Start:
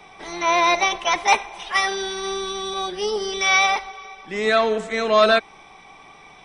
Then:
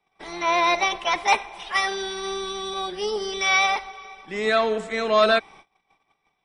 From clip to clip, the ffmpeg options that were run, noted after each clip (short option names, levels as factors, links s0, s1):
-af "agate=range=0.0501:threshold=0.00794:ratio=16:detection=peak,bandreject=f=6100:w=12,volume=0.75"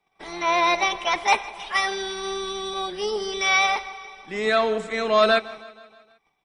-af "aecho=1:1:158|316|474|632|790:0.1|0.057|0.0325|0.0185|0.0106"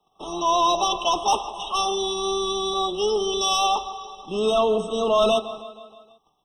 -filter_complex "[0:a]acrossover=split=110|4700[s0][s1][s2];[s1]asoftclip=type=tanh:threshold=0.1[s3];[s0][s3][s2]amix=inputs=3:normalize=0,afftfilt=real='re*eq(mod(floor(b*sr/1024/1300),2),0)':imag='im*eq(mod(floor(b*sr/1024/1300),2),0)':win_size=1024:overlap=0.75,volume=1.88"